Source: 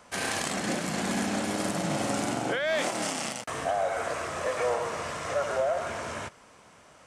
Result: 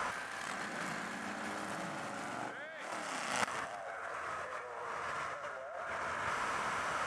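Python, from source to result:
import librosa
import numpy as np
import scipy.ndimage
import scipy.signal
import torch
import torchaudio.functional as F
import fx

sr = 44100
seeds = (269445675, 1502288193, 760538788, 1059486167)

y = fx.peak_eq(x, sr, hz=1400.0, db=13.0, octaves=1.7)
y = fx.over_compress(y, sr, threshold_db=-38.0, ratio=-1.0)
y = fx.echo_feedback(y, sr, ms=156, feedback_pct=42, wet_db=-11)
y = y * librosa.db_to_amplitude(-3.5)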